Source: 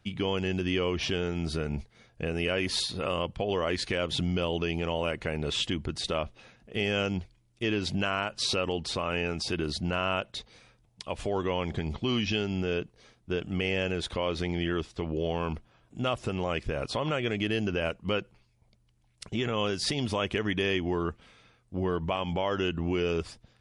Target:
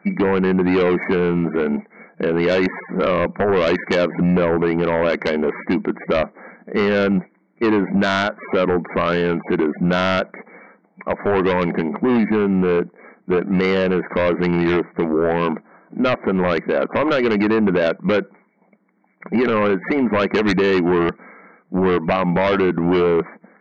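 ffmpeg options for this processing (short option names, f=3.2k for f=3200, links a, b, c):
-af "afftfilt=real='re*between(b*sr/4096,170,2300)':imag='im*between(b*sr/4096,170,2300)':win_size=4096:overlap=0.75,aeval=exprs='0.141*sin(PI/2*2.51*val(0)/0.141)':c=same,volume=5dB"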